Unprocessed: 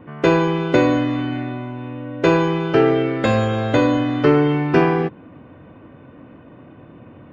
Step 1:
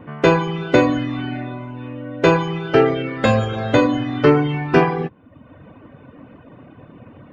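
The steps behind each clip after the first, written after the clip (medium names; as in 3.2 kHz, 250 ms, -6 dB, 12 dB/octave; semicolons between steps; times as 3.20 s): reverb removal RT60 0.84 s; peaking EQ 340 Hz -4.5 dB 0.25 oct; trim +3 dB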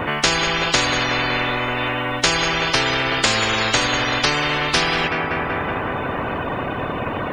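tape echo 188 ms, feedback 75%, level -16.5 dB, low-pass 3.6 kHz; spectrum-flattening compressor 10:1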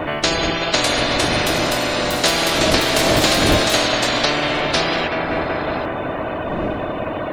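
wind noise 360 Hz -27 dBFS; ever faster or slower copies 674 ms, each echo +6 st, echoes 3; graphic EQ with 31 bands 315 Hz +6 dB, 630 Hz +10 dB, 4 kHz +5 dB; trim -3 dB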